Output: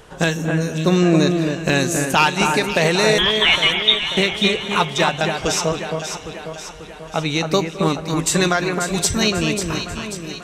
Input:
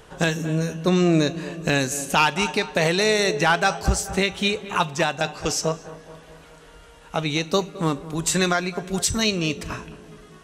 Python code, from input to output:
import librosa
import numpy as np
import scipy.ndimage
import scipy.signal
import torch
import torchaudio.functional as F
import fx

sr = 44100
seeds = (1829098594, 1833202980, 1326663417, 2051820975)

y = fx.freq_invert(x, sr, carrier_hz=3700, at=(3.18, 4.17))
y = fx.echo_alternate(y, sr, ms=270, hz=2300.0, feedback_pct=72, wet_db=-5)
y = y * 10.0 ** (3.0 / 20.0)